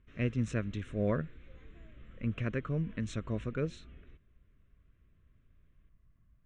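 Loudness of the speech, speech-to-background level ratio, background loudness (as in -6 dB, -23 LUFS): -35.5 LUFS, 20.0 dB, -55.5 LUFS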